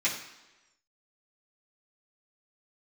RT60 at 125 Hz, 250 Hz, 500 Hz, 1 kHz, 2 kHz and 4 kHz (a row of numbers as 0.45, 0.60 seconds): 0.85, 1.0, 1.1, 1.1, 1.0, 1.0 seconds